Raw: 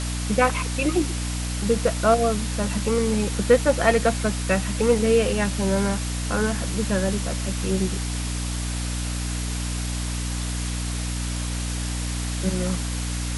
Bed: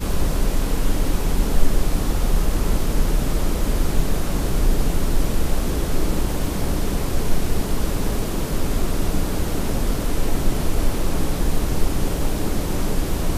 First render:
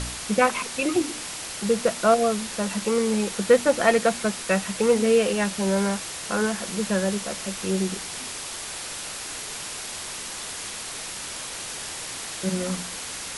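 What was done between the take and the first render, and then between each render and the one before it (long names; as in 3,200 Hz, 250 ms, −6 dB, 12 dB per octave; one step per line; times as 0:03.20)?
hum removal 60 Hz, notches 5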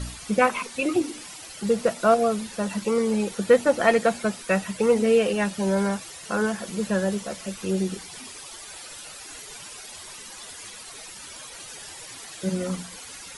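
broadband denoise 12 dB, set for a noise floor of −35 dBFS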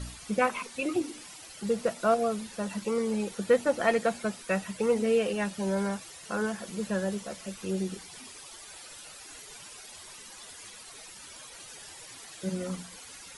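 level −6 dB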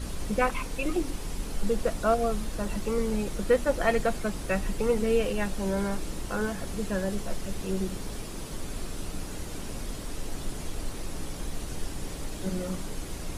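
mix in bed −14.5 dB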